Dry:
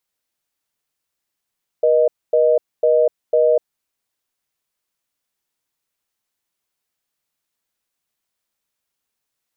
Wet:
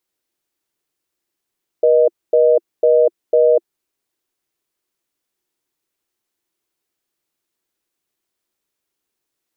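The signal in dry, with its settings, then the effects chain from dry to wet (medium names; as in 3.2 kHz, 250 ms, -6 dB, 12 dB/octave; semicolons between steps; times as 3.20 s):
call progress tone reorder tone, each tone -14 dBFS 1.81 s
peaking EQ 350 Hz +11.5 dB 0.56 oct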